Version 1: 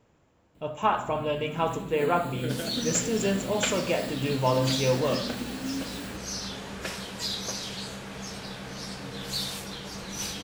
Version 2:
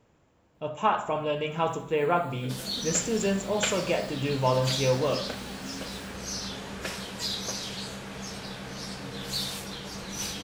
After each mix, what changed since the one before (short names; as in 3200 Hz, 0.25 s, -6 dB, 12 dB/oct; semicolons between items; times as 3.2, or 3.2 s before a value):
first sound -10.0 dB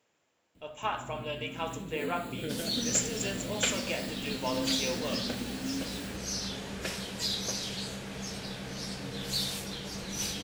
speech: add HPF 1300 Hz 6 dB/oct; first sound +7.5 dB; master: add bell 1100 Hz -5 dB 1.2 oct